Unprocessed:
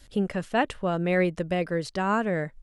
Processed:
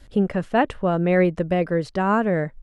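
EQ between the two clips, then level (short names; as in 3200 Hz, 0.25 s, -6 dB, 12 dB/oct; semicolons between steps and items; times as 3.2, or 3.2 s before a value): high shelf 2700 Hz -12 dB; +6.0 dB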